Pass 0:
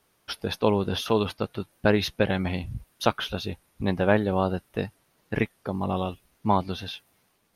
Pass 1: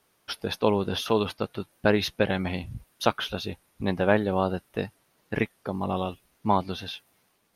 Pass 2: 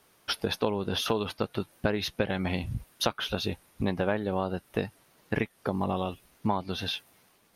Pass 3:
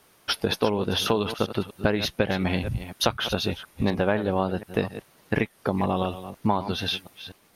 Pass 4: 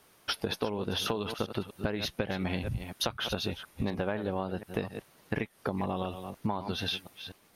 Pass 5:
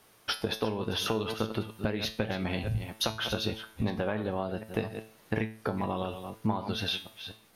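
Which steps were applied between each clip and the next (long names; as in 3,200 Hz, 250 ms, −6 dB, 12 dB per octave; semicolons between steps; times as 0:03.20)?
low-shelf EQ 120 Hz −5.5 dB
downward compressor 5 to 1, threshold −30 dBFS, peak gain reduction 13.5 dB; level +5 dB
delay that plays each chunk backwards 244 ms, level −12.5 dB; level +4.5 dB
downward compressor 3 to 1, threshold −26 dBFS, peak gain reduction 8 dB; level −3 dB
tuned comb filter 110 Hz, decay 0.42 s, harmonics all, mix 70%; level +8.5 dB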